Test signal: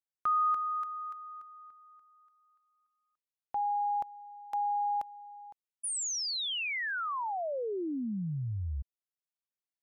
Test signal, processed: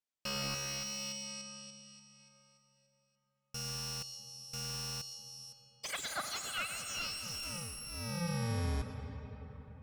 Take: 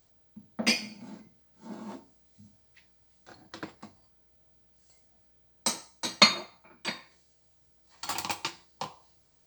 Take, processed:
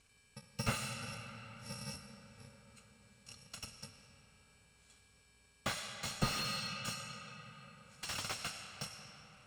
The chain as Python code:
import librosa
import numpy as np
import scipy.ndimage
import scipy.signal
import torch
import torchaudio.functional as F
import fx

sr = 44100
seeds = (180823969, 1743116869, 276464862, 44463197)

y = fx.bit_reversed(x, sr, seeds[0], block=128)
y = scipy.signal.sosfilt(scipy.signal.butter(4, 8900.0, 'lowpass', fs=sr, output='sos'), y)
y = fx.rev_freeverb(y, sr, rt60_s=4.9, hf_ratio=0.5, predelay_ms=60, drr_db=7.5)
y = fx.slew_limit(y, sr, full_power_hz=47.0)
y = y * librosa.db_to_amplitude(1.0)